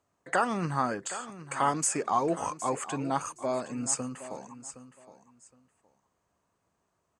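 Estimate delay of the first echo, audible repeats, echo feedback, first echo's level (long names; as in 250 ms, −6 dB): 766 ms, 2, 21%, −14.0 dB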